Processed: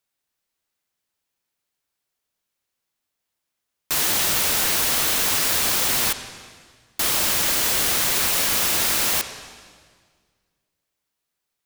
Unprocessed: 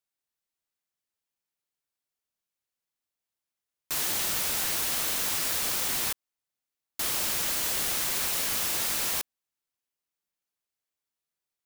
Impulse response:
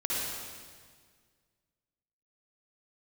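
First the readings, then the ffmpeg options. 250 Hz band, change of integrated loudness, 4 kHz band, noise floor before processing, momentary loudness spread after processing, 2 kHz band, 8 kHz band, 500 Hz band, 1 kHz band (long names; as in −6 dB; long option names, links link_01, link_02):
+9.0 dB, +7.5 dB, +8.5 dB, below −85 dBFS, 5 LU, +9.0 dB, +7.5 dB, +9.5 dB, +9.0 dB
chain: -filter_complex "[0:a]asplit=2[link_01][link_02];[1:a]atrim=start_sample=2205,lowpass=6600[link_03];[link_02][link_03]afir=irnorm=-1:irlink=0,volume=-15.5dB[link_04];[link_01][link_04]amix=inputs=2:normalize=0,volume=7.5dB"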